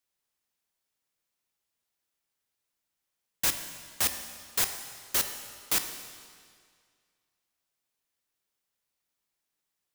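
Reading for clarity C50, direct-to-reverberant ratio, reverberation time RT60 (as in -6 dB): 8.0 dB, 7.0 dB, 2.0 s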